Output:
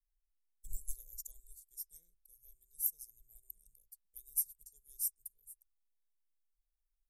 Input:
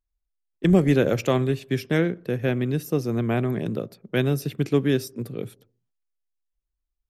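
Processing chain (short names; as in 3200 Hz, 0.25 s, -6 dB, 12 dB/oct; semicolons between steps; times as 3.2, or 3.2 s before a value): inverse Chebyshev band-stop 120–3000 Hz, stop band 60 dB; upward expander 1.5:1, over -59 dBFS; gain +9.5 dB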